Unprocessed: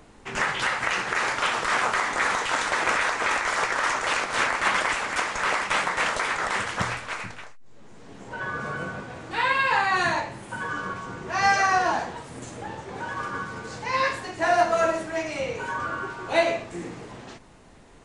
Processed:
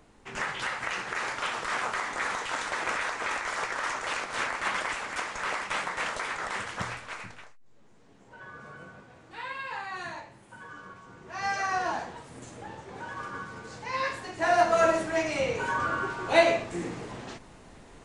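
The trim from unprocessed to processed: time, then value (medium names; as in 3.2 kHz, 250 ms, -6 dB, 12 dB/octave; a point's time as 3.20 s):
7.40 s -7 dB
8.20 s -14.5 dB
11.02 s -14.5 dB
11.85 s -6.5 dB
14.01 s -6.5 dB
14.95 s +1 dB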